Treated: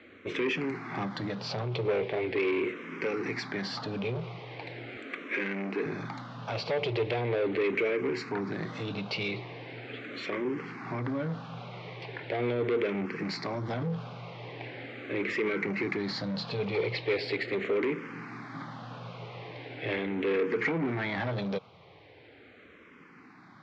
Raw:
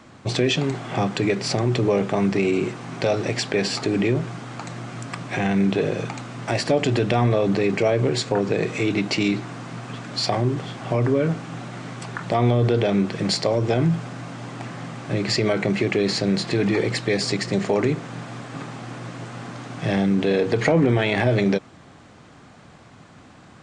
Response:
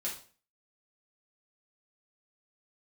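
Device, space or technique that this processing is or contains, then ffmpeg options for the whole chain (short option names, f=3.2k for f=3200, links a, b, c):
barber-pole phaser into a guitar amplifier: -filter_complex "[0:a]asplit=2[a][b];[b]afreqshift=-0.4[c];[a][c]amix=inputs=2:normalize=1,asoftclip=type=tanh:threshold=-22.5dB,highpass=110,equalizer=f=140:t=q:w=4:g=-5,equalizer=f=210:t=q:w=4:g=-4,equalizer=f=450:t=q:w=4:g=5,equalizer=f=680:t=q:w=4:g=-4,equalizer=f=2.2k:t=q:w=4:g=7,lowpass=f=4.3k:w=0.5412,lowpass=f=4.3k:w=1.3066,asettb=1/sr,asplit=3[d][e][f];[d]atrim=end=4.974[g];[e]atrim=start=4.97:end=5.86,asetpts=PTS-STARTPTS,afade=t=in:d=0.004:c=qsin,afade=t=out:st=0.886:d=0.004:c=qsin,highpass=f=210:w=0.5412,highpass=f=210:w=1.3066[h];[f]atrim=start=5.856[i];[g][h]acrossfade=d=0.004:c1=hsin:c2=qsin[j];[j][i]acrossfade=d=0.004:c1=qsin:c2=hsin,volume=-3dB"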